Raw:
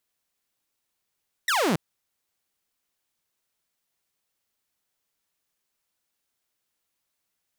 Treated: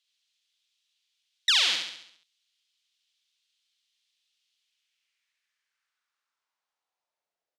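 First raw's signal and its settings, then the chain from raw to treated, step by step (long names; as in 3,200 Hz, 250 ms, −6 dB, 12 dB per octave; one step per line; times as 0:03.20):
single falling chirp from 2,000 Hz, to 140 Hz, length 0.28 s saw, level −18 dB
parametric band 5,400 Hz +13 dB 2.8 octaves
band-pass filter sweep 3,300 Hz → 540 Hz, 0:04.53–0:07.54
on a send: repeating echo 68 ms, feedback 52%, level −4.5 dB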